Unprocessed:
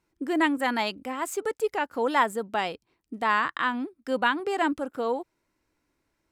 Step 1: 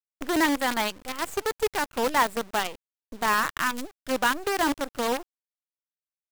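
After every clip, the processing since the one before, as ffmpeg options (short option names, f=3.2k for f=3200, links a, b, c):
-af "acrusher=bits=5:dc=4:mix=0:aa=0.000001"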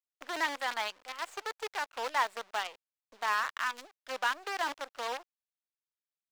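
-filter_complex "[0:a]acrossover=split=530 6500:gain=0.0708 1 0.224[a][b][c];[a][b][c]amix=inputs=3:normalize=0,volume=-6dB"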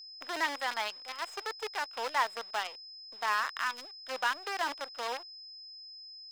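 -af "aeval=exprs='val(0)+0.00501*sin(2*PI*5100*n/s)':c=same"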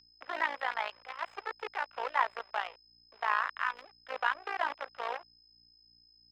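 -filter_complex "[0:a]aeval=exprs='val(0)+0.000631*(sin(2*PI*60*n/s)+sin(2*PI*2*60*n/s)/2+sin(2*PI*3*60*n/s)/3+sin(2*PI*4*60*n/s)/4+sin(2*PI*5*60*n/s)/5)':c=same,tremolo=f=57:d=0.824,acrossover=split=420 3000:gain=0.224 1 0.0794[a][b][c];[a][b][c]amix=inputs=3:normalize=0,volume=4.5dB"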